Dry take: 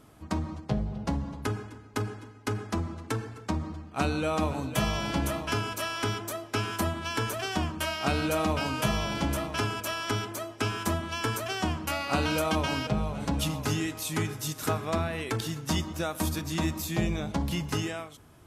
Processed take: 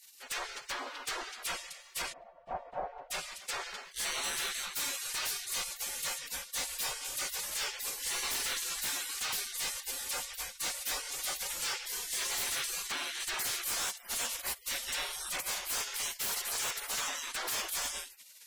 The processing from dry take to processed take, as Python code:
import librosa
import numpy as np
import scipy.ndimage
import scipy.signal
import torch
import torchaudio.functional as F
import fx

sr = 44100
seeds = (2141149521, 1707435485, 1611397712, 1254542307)

y = fx.spec_gate(x, sr, threshold_db=-30, keep='weak')
y = fx.fold_sine(y, sr, drive_db=17, ceiling_db=-26.0)
y = fx.lowpass_res(y, sr, hz=710.0, q=3.8, at=(2.12, 3.1), fade=0.02)
y = y * 10.0 ** (-4.0 / 20.0)